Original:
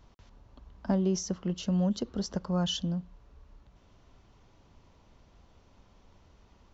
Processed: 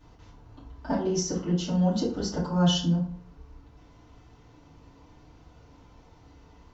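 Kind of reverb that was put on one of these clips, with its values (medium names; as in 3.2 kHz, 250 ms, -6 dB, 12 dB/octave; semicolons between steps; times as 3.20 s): FDN reverb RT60 0.53 s, low-frequency decay 1.1×, high-frequency decay 0.6×, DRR -9.5 dB; trim -4 dB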